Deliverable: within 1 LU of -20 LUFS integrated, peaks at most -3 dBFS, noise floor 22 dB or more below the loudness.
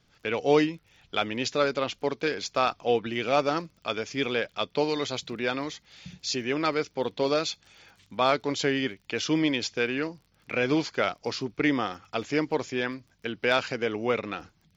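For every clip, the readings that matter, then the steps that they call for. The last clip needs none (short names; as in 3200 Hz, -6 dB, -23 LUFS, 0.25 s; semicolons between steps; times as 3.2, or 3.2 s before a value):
ticks 25/s; loudness -28.0 LUFS; peak -8.5 dBFS; loudness target -20.0 LUFS
-> de-click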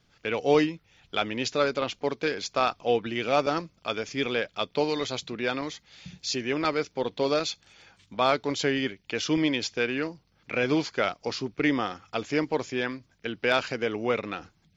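ticks 0/s; loudness -28.0 LUFS; peak -8.5 dBFS; loudness target -20.0 LUFS
-> gain +8 dB; limiter -3 dBFS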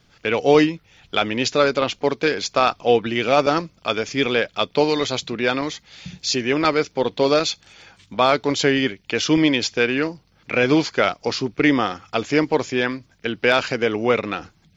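loudness -20.5 LUFS; peak -3.0 dBFS; noise floor -59 dBFS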